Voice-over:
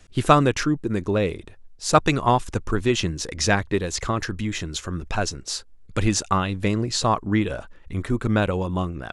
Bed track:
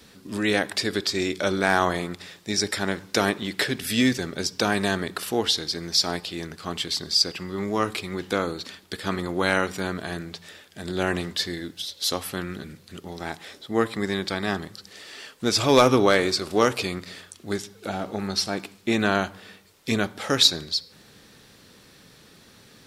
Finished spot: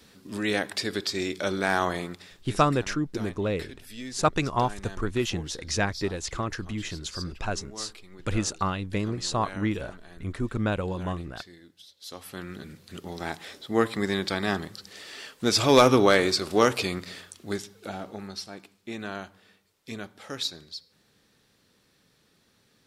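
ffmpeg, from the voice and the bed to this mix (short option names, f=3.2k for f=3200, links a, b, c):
-filter_complex "[0:a]adelay=2300,volume=-6dB[a];[1:a]volume=14dB,afade=t=out:st=2.05:d=0.54:silence=0.188365,afade=t=in:st=12.05:d=0.93:silence=0.125893,afade=t=out:st=17.11:d=1.35:silence=0.223872[b];[a][b]amix=inputs=2:normalize=0"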